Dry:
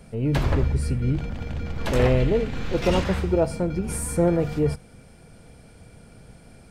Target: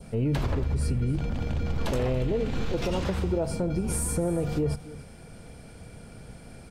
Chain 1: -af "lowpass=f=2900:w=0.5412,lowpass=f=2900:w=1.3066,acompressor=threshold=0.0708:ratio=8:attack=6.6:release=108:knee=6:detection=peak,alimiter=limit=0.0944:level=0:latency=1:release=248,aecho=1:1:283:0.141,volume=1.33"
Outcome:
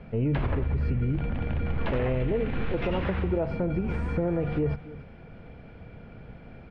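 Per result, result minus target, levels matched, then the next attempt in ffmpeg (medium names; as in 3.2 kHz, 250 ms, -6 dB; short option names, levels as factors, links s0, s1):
4 kHz band -5.0 dB; 2 kHz band +3.0 dB
-af "acompressor=threshold=0.0708:ratio=8:attack=6.6:release=108:knee=6:detection=peak,alimiter=limit=0.0944:level=0:latency=1:release=248,aecho=1:1:283:0.141,volume=1.33"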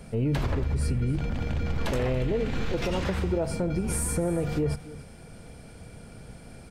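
2 kHz band +3.0 dB
-af "acompressor=threshold=0.0708:ratio=8:attack=6.6:release=108:knee=6:detection=peak,adynamicequalizer=threshold=0.00251:dfrequency=1900:dqfactor=1.5:tfrequency=1900:tqfactor=1.5:attack=5:release=100:ratio=0.4:range=2.5:mode=cutabove:tftype=bell,alimiter=limit=0.0944:level=0:latency=1:release=248,aecho=1:1:283:0.141,volume=1.33"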